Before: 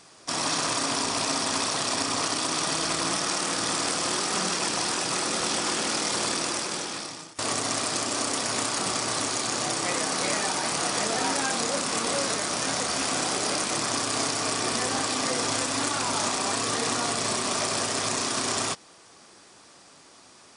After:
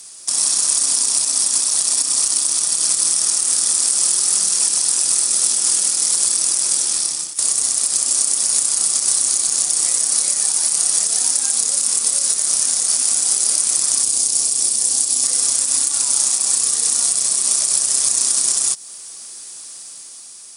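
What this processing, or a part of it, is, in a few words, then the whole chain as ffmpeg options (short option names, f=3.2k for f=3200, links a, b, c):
FM broadcast chain: -filter_complex "[0:a]highpass=f=70:w=0.5412,highpass=f=70:w=1.3066,dynaudnorm=f=130:g=11:m=3.5dB,acrossover=split=2000|4100[a][b][c];[a]acompressor=threshold=-34dB:ratio=4[d];[b]acompressor=threshold=-46dB:ratio=4[e];[c]acompressor=threshold=-32dB:ratio=4[f];[d][e][f]amix=inputs=3:normalize=0,aemphasis=mode=production:type=75fm,alimiter=limit=-10.5dB:level=0:latency=1:release=90,asoftclip=type=hard:threshold=-11.5dB,lowpass=f=15k:w=0.5412,lowpass=f=15k:w=1.3066,aemphasis=mode=production:type=75fm,asettb=1/sr,asplit=3[g][h][i];[g]atrim=end=14.034[j];[h]atrim=start=14.03:end=15.24,asetpts=PTS-STARTPTS,afade=t=in:d=0.004:c=qsin,afade=t=out:st=1.206:d=0.004:c=qsin,equalizer=f=1.5k:w=0.93:g=-8[k];[i]atrim=start=15.236[l];[j][k]acrossfade=d=0.004:c1=hsin:c2=qsin[m];[m][l]acrossfade=d=0.004:c1=qsin:c2=hsin,volume=-4dB"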